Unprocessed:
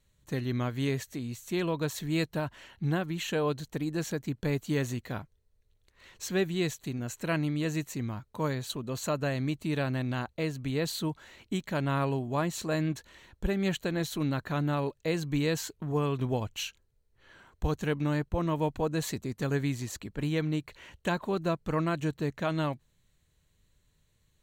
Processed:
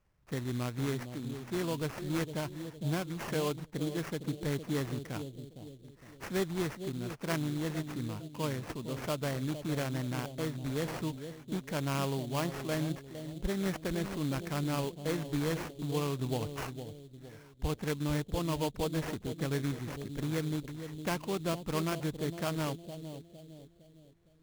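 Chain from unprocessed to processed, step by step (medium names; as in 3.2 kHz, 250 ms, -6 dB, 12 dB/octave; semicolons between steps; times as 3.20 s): bucket-brigade echo 459 ms, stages 2048, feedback 43%, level -9 dB; sample-rate reducer 3.8 kHz, jitter 20%; trim -4 dB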